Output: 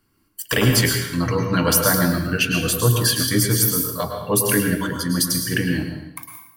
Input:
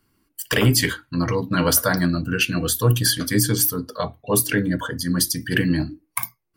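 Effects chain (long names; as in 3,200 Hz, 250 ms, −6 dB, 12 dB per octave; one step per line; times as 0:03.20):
fade-out on the ending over 1.23 s
on a send: high-shelf EQ 11,000 Hz +3.5 dB + convolution reverb RT60 0.80 s, pre-delay 98 ms, DRR 3.5 dB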